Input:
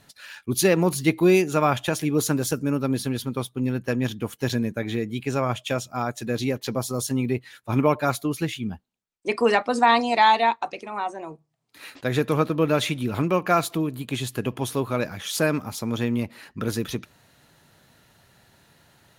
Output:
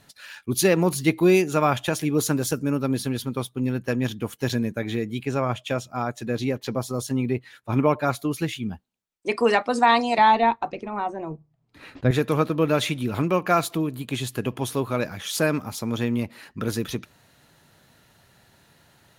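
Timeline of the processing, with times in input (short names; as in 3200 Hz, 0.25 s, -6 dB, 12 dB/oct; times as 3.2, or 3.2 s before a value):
5.25–8.19 high shelf 4100 Hz -6.5 dB
10.18–12.11 RIAA curve playback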